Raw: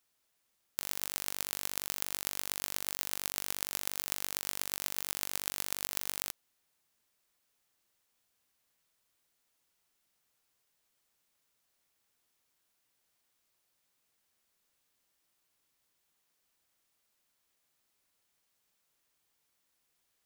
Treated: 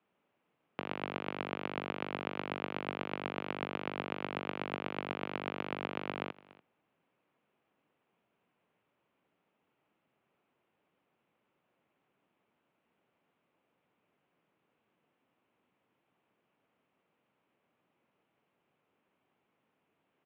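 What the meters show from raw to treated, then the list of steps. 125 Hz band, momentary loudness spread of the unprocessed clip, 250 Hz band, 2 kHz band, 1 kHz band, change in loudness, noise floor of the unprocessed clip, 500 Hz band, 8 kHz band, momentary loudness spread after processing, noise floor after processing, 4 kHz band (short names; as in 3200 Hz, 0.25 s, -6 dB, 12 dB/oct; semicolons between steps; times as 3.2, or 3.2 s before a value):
+9.5 dB, 2 LU, +13.0 dB, +2.5 dB, +7.5 dB, -4.5 dB, -78 dBFS, +11.5 dB, under -40 dB, 2 LU, -81 dBFS, -7.0 dB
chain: tilt shelf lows +4.5 dB, about 720 Hz; mistuned SSB -57 Hz 200–2800 Hz; bell 1800 Hz -5.5 dB 0.71 oct; on a send: echo 0.289 s -21 dB; on the sum: gain +10 dB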